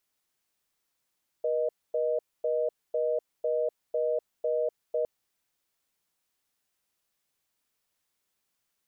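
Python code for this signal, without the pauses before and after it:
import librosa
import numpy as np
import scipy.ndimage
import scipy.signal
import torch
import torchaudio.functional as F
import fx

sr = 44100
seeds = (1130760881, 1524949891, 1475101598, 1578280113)

y = fx.call_progress(sr, length_s=3.61, kind='reorder tone', level_db=-27.5)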